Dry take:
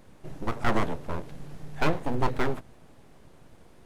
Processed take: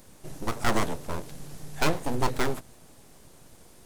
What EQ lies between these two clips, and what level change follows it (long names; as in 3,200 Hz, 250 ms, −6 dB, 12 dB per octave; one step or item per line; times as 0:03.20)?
bass and treble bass −1 dB, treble +10 dB
high-shelf EQ 5,500 Hz +5 dB
0.0 dB